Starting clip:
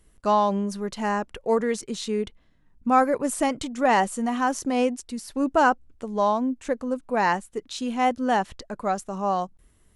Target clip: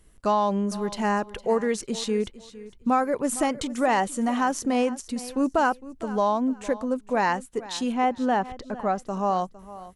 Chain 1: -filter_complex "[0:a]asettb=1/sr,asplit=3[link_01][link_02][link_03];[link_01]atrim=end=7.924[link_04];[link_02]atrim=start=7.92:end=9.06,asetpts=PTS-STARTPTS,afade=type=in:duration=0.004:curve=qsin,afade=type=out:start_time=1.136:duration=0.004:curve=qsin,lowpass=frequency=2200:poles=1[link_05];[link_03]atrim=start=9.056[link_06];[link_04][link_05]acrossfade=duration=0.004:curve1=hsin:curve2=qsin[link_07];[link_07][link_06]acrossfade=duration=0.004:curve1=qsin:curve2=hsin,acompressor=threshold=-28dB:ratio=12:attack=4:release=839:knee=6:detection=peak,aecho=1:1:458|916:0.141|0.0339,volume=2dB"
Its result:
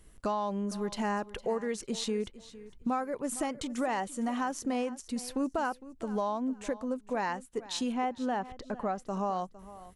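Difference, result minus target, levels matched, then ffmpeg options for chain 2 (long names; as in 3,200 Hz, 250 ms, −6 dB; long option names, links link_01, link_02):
downward compressor: peak gain reduction +10 dB
-filter_complex "[0:a]asettb=1/sr,asplit=3[link_01][link_02][link_03];[link_01]atrim=end=7.924[link_04];[link_02]atrim=start=7.92:end=9.06,asetpts=PTS-STARTPTS,afade=type=in:duration=0.004:curve=qsin,afade=type=out:start_time=1.136:duration=0.004:curve=qsin,lowpass=frequency=2200:poles=1[link_05];[link_03]atrim=start=9.056[link_06];[link_04][link_05]acrossfade=duration=0.004:curve1=hsin:curve2=qsin[link_07];[link_07][link_06]acrossfade=duration=0.004:curve1=qsin:curve2=hsin,acompressor=threshold=-17dB:ratio=12:attack=4:release=839:knee=6:detection=peak,aecho=1:1:458|916:0.141|0.0339,volume=2dB"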